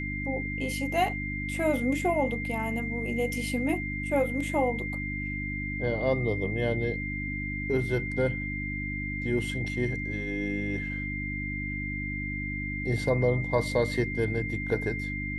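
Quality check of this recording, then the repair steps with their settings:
hum 50 Hz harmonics 6 -35 dBFS
whine 2.1 kHz -34 dBFS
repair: de-hum 50 Hz, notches 6; band-stop 2.1 kHz, Q 30

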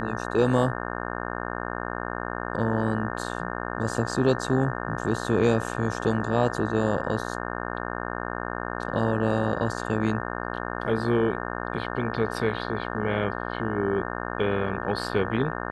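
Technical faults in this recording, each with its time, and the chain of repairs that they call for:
buzz 60 Hz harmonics 30 -32 dBFS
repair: de-hum 60 Hz, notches 30

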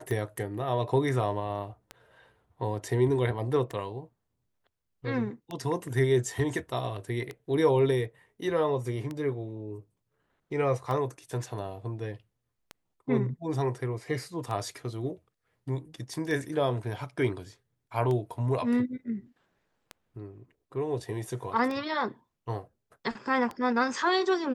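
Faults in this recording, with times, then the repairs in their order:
tick 33 1/3 rpm -22 dBFS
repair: de-click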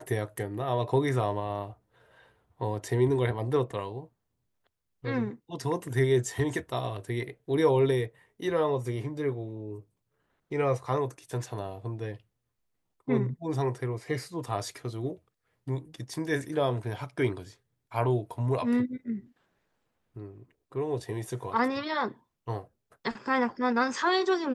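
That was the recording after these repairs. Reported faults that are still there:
nothing left

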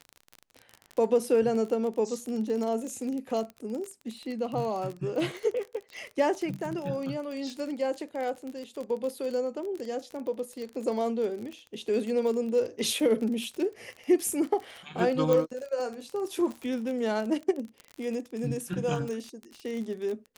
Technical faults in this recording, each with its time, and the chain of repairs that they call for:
crackle 32 per s -33 dBFS
15.33 s: pop -14 dBFS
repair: de-click

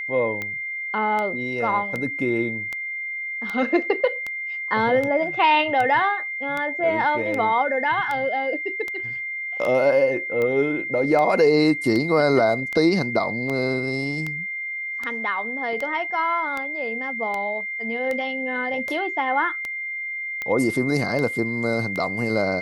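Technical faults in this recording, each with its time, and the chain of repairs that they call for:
tick 78 rpm -15 dBFS
whine 2.1 kHz -27 dBFS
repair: de-click; band-stop 2.1 kHz, Q 30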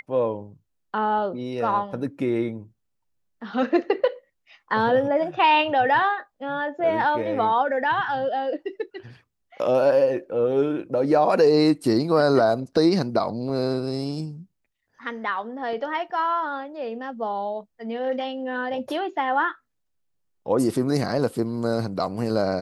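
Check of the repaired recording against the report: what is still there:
nothing left

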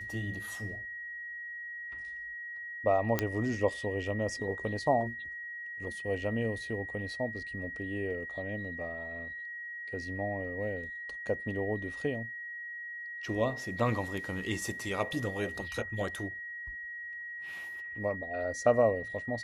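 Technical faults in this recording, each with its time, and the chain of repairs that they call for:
whine 1.9 kHz -39 dBFS
3.19 s: pop -13 dBFS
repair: de-click; band-stop 1.9 kHz, Q 30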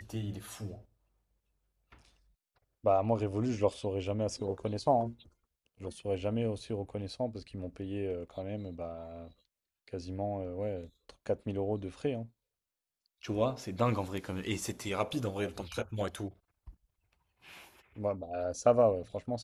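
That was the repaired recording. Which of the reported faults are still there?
nothing left

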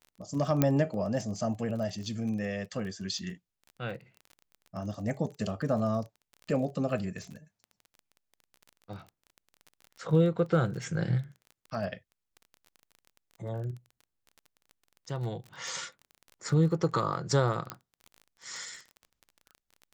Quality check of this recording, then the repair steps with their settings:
crackle 24 per s -39 dBFS
0.62 s: pop -10 dBFS
17.70 s: pop -17 dBFS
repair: de-click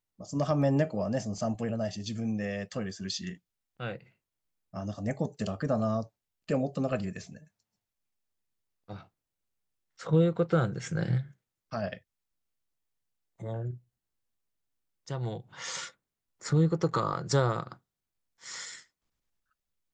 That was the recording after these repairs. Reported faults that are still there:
0.62 s: pop

